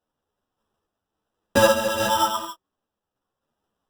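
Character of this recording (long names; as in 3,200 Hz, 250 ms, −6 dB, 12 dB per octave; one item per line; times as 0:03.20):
sample-and-hold tremolo
aliases and images of a low sample rate 2,200 Hz, jitter 0%
a shimmering, thickened sound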